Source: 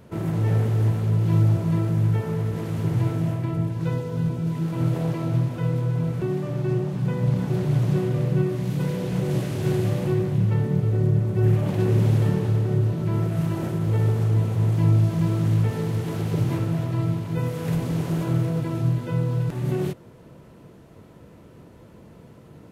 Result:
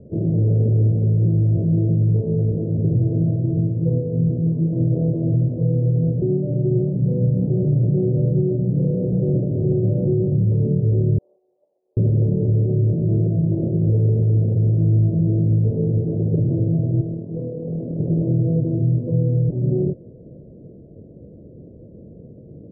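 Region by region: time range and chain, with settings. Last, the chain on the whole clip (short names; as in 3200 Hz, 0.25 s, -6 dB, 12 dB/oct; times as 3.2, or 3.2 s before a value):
11.18–11.97 ladder high-pass 1100 Hz, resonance 25% + negative-ratio compressor -54 dBFS, ratio -0.5
17.01–18 AM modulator 39 Hz, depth 35% + HPF 180 Hz + hard clip -27.5 dBFS
whole clip: steep low-pass 590 Hz 48 dB/oct; limiter -17 dBFS; gain +6 dB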